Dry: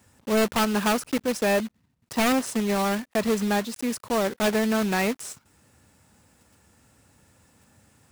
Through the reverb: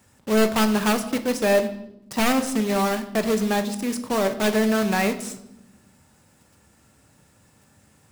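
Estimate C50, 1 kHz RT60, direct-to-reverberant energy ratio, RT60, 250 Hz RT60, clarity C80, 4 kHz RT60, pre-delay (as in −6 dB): 12.5 dB, 0.70 s, 7.5 dB, 0.85 s, 1.6 s, 14.5 dB, 0.65 s, 5 ms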